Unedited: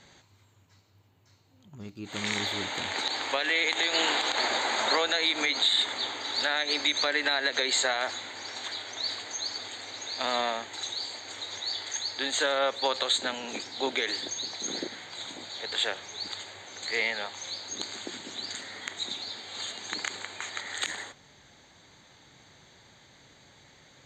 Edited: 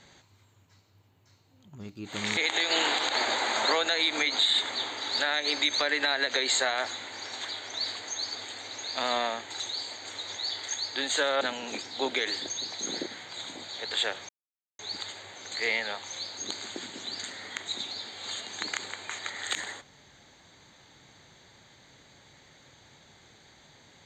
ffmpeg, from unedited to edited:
-filter_complex "[0:a]asplit=4[s0][s1][s2][s3];[s0]atrim=end=2.372[s4];[s1]atrim=start=3.598:end=12.642[s5];[s2]atrim=start=13.218:end=16.1,asetpts=PTS-STARTPTS,afade=t=out:st=2.878:d=0.004:c=hsin,apad=pad_dur=0.5[s6];[s3]atrim=start=16.1,asetpts=PTS-STARTPTS,afade=t=in:d=0.004:c=hsin[s7];[s4][s5]acrossfade=d=0.004:c1=hsin:c2=hsin[s8];[s6][s7]concat=n=2:v=0:a=1[s9];[s8][s9]acrossfade=d=0.004:c1=hsin:c2=hsin"

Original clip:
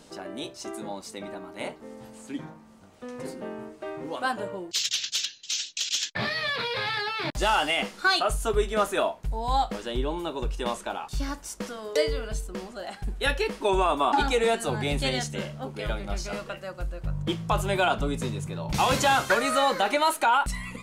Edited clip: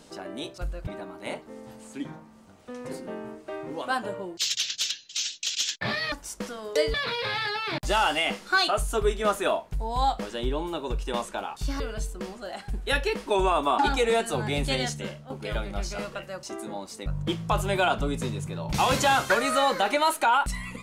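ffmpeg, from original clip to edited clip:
-filter_complex "[0:a]asplit=9[s0][s1][s2][s3][s4][s5][s6][s7][s8];[s0]atrim=end=0.582[s9];[s1]atrim=start=16.768:end=17.062[s10];[s2]atrim=start=1.208:end=6.462[s11];[s3]atrim=start=11.318:end=12.142[s12];[s4]atrim=start=6.458:end=11.322[s13];[s5]atrim=start=12.138:end=15.64,asetpts=PTS-STARTPTS,afade=t=out:st=3.132:d=0.37:silence=0.298538[s14];[s6]atrim=start=15.64:end=16.772,asetpts=PTS-STARTPTS,afade=t=in:d=0.004:c=hsin:silence=0.298538[s15];[s7]atrim=start=0.578:end=1.212[s16];[s8]atrim=start=17.058[s17];[s9][s10]acrossfade=d=0.004:c1=hsin:c2=hsin[s18];[s18][s11]acrossfade=d=0.004:c1=hsin:c2=hsin[s19];[s19][s12]acrossfade=d=0.004:c1=hsin:c2=hsin[s20];[s20][s13]acrossfade=d=0.004:c1=hsin:c2=hsin[s21];[s14][s15]concat=n=2:v=0:a=1[s22];[s21][s22]acrossfade=d=0.004:c1=hsin:c2=hsin[s23];[s23][s16]acrossfade=d=0.004:c1=hsin:c2=hsin[s24];[s24][s17]acrossfade=d=0.004:c1=hsin:c2=hsin"

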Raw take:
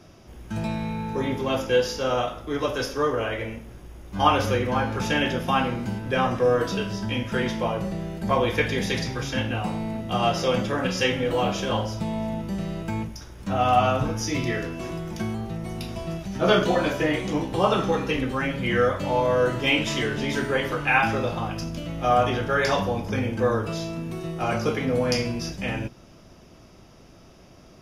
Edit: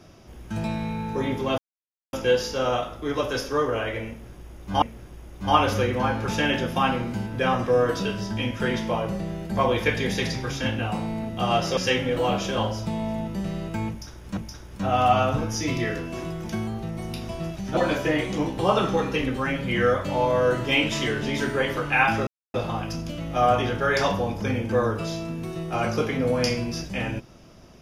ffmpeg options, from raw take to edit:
-filter_complex "[0:a]asplit=7[s0][s1][s2][s3][s4][s5][s6];[s0]atrim=end=1.58,asetpts=PTS-STARTPTS,afade=t=out:st=1.576:d=0.004:c=hsin,apad=pad_dur=0.55[s7];[s1]atrim=start=1.58:end=4.272,asetpts=PTS-STARTPTS,afade=t=in:d=0.004:c=hsin[s8];[s2]atrim=start=3.538:end=10.492[s9];[s3]atrim=start=10.908:end=13.512[s10];[s4]atrim=start=13.038:end=16.442[s11];[s5]atrim=start=16.718:end=21.22,asetpts=PTS-STARTPTS,afade=t=out:st=4.498:d=0.004:c=hsin,apad=pad_dur=0.27[s12];[s6]atrim=start=21.22,asetpts=PTS-STARTPTS,afade=t=in:d=0.004:c=hsin[s13];[s7][s8]concat=n=2:v=0:a=1[s14];[s14][s9]acrossfade=d=0.004:c1=hsin:c2=hsin[s15];[s15][s10]acrossfade=d=0.004:c1=hsin:c2=hsin[s16];[s16][s11]acrossfade=d=0.004:c1=hsin:c2=hsin[s17];[s12][s13]concat=n=2:v=0:a=1[s18];[s17][s18]acrossfade=d=0.004:c1=hsin:c2=hsin"

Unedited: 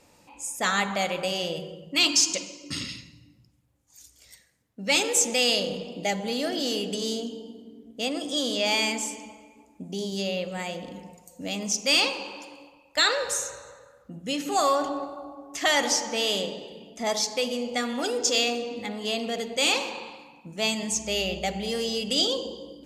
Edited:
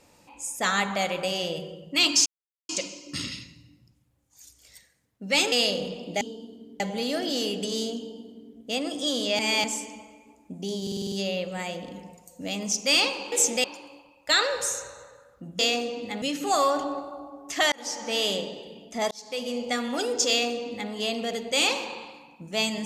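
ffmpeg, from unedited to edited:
-filter_complex "[0:a]asplit=19[s0][s1][s2][s3][s4][s5][s6][s7][s8][s9][s10][s11][s12][s13][s14][s15][s16][s17][s18];[s0]atrim=end=2.26,asetpts=PTS-STARTPTS,afade=t=out:st=2.256:d=0.004:c=hsin,apad=pad_dur=0.43[s19];[s1]atrim=start=2.26:end=5.092,asetpts=PTS-STARTPTS,afade=t=in:d=0.004:c=hsin[s20];[s2]atrim=start=5.408:end=6.102[s21];[s3]atrim=start=7.268:end=7.862[s22];[s4]atrim=start=6.098:end=8.692[s23];[s5]atrim=start=8.688:end=8.942,asetpts=PTS-STARTPTS,areverse[s24];[s6]atrim=start=8.938:end=10.172[s25];[s7]atrim=start=10.118:end=10.172[s26];[s8]atrim=start=10.118:end=10.172[s27];[s9]atrim=start=10.118:end=10.172[s28];[s10]atrim=start=10.118:end=10.172[s29];[s11]atrim=start=10.118:end=10.172[s30];[s12]atrim=start=10.118:end=12.322[s31];[s13]atrim=start=5.088:end=5.412[s32];[s14]atrim=start=12.318:end=14.272[s33];[s15]atrim=start=18.328:end=18.962[s34];[s16]atrim=start=14.268:end=15.77,asetpts=PTS-STARTPTS,afade=t=out:st=1.498:d=0.004:c=hsin[s35];[s17]atrim=start=15.77:end=17.16,asetpts=PTS-STARTPTS,afade=t=in:d=0.45,afade=t=out:st=1.386:d=0.004:c=hsin[s36];[s18]atrim=start=17.16,asetpts=PTS-STARTPTS,afade=t=in:d=0.46[s37];[s19][s20]concat=n=2:v=0:a=1[s38];[s38][s21]acrossfade=d=0.004:c1=hsin:c2=hsin[s39];[s39][s22]acrossfade=d=0.004:c1=hsin:c2=hsin[s40];[s40][s23]acrossfade=d=0.004:c1=hsin:c2=hsin[s41];[s41][s24]acrossfade=d=0.004:c1=hsin:c2=hsin[s42];[s42][s25]acrossfade=d=0.004:c1=hsin:c2=hsin[s43];[s43][s26]acrossfade=d=0.004:c1=hsin:c2=hsin[s44];[s44][s27]acrossfade=d=0.004:c1=hsin:c2=hsin[s45];[s45][s28]acrossfade=d=0.004:c1=hsin:c2=hsin[s46];[s46][s29]acrossfade=d=0.004:c1=hsin:c2=hsin[s47];[s47][s30]acrossfade=d=0.004:c1=hsin:c2=hsin[s48];[s48][s31]acrossfade=d=0.004:c1=hsin:c2=hsin[s49];[s49][s32]acrossfade=d=0.004:c1=hsin:c2=hsin[s50];[s50][s33]acrossfade=d=0.004:c1=hsin:c2=hsin[s51];[s51][s34]acrossfade=d=0.004:c1=hsin:c2=hsin[s52];[s35][s36][s37]concat=n=3:v=0:a=1[s53];[s52][s53]acrossfade=d=0.004:c1=hsin:c2=hsin"

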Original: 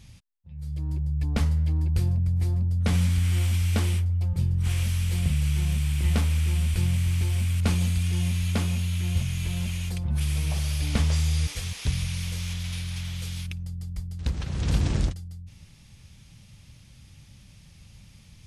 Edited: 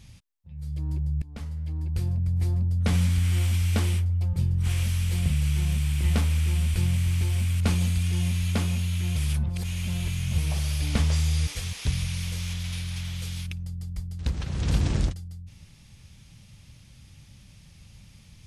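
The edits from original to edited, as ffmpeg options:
-filter_complex "[0:a]asplit=4[s0][s1][s2][s3];[s0]atrim=end=1.22,asetpts=PTS-STARTPTS,afade=t=out:st=1.216:d=0.004:c=hsin:silence=0.0944061[s4];[s1]atrim=start=1.22:end=9.162,asetpts=PTS-STARTPTS,afade=t=in:d=1.24:silence=0.0944061[s5];[s2]atrim=start=9.158:end=10.382,asetpts=PTS-STARTPTS,areverse[s6];[s3]atrim=start=10.378[s7];[s4][s5]concat=n=2:v=0:a=1[s8];[s8][s6]acrossfade=d=0.004:c1=hsin:c2=hsin[s9];[s9][s7]acrossfade=d=0.004:c1=hsin:c2=hsin"

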